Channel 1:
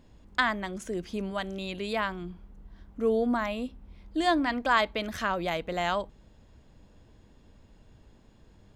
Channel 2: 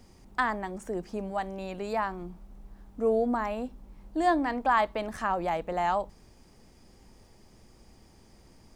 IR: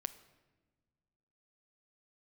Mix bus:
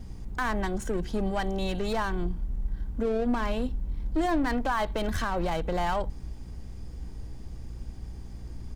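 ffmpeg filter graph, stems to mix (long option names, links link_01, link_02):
-filter_complex "[0:a]bandreject=frequency=2700:width=21,aecho=1:1:2.6:0.93,aeval=exprs='(tanh(50.1*val(0)+0.65)-tanh(0.65))/50.1':channel_layout=same,volume=2dB[link_01];[1:a]lowshelf=frequency=160:gain=9.5,aeval=exprs='val(0)+0.00355*(sin(2*PI*60*n/s)+sin(2*PI*2*60*n/s)/2+sin(2*PI*3*60*n/s)/3+sin(2*PI*4*60*n/s)/4+sin(2*PI*5*60*n/s)/5)':channel_layout=same,adelay=2,volume=1.5dB[link_02];[link_01][link_02]amix=inputs=2:normalize=0,lowshelf=frequency=120:gain=7.5,alimiter=limit=-18.5dB:level=0:latency=1:release=57"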